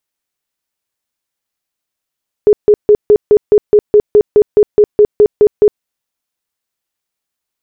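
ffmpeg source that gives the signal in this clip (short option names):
-f lavfi -i "aevalsrc='0.75*sin(2*PI*418*mod(t,0.21))*lt(mod(t,0.21),25/418)':d=3.36:s=44100"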